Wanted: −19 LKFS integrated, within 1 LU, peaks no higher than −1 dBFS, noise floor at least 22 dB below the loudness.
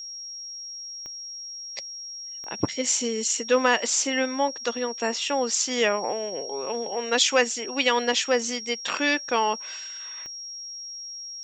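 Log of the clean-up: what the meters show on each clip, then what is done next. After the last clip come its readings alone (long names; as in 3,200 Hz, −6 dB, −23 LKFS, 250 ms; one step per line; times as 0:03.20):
number of clicks 4; interfering tone 5,600 Hz; level of the tone −35 dBFS; integrated loudness −26.0 LKFS; sample peak −6.0 dBFS; target loudness −19.0 LKFS
→ click removal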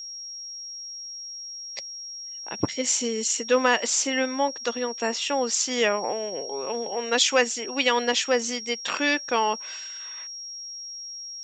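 number of clicks 1; interfering tone 5,600 Hz; level of the tone −35 dBFS
→ notch filter 5,600 Hz, Q 30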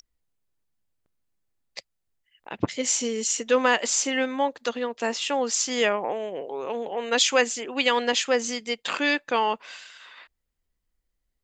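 interfering tone none found; integrated loudness −25.0 LKFS; sample peak −6.0 dBFS; target loudness −19.0 LKFS
→ level +6 dB
brickwall limiter −1 dBFS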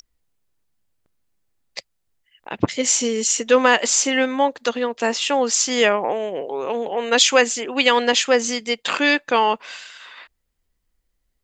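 integrated loudness −19.0 LKFS; sample peak −1.0 dBFS; background noise floor −73 dBFS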